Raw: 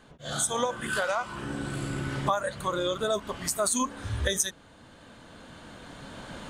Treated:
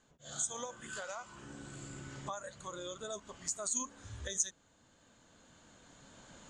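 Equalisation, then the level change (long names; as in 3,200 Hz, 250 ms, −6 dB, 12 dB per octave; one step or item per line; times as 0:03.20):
transistor ladder low-pass 7,400 Hz, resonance 75%
−3.5 dB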